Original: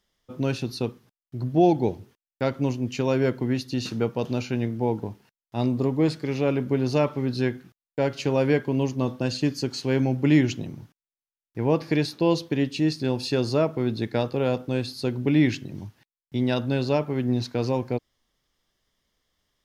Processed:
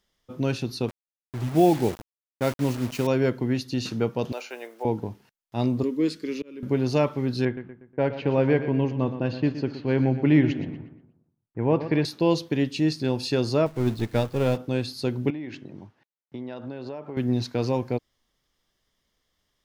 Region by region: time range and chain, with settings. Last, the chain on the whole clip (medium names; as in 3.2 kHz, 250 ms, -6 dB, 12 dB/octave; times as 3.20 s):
0.88–3.07 s: word length cut 6-bit, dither none + tape noise reduction on one side only decoder only
4.32–4.85 s: block-companded coder 7-bit + high-pass 490 Hz 24 dB/octave + dynamic bell 4.4 kHz, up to -5 dB, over -52 dBFS, Q 0.98
5.83–6.63 s: peaking EQ 1.3 kHz -2.5 dB 2.3 oct + slow attack 563 ms + static phaser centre 310 Hz, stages 4
7.45–12.05 s: low-pass 2.6 kHz + feedback delay 120 ms, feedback 46%, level -12 dB + level-controlled noise filter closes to 1.3 kHz, open at -17.5 dBFS
13.66–14.57 s: jump at every zero crossing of -30 dBFS + bass shelf 88 Hz +11.5 dB + upward expansion 2.5:1, over -30 dBFS
15.30–17.17 s: band-pass filter 670 Hz, Q 0.51 + compression 16:1, threshold -30 dBFS
whole clip: none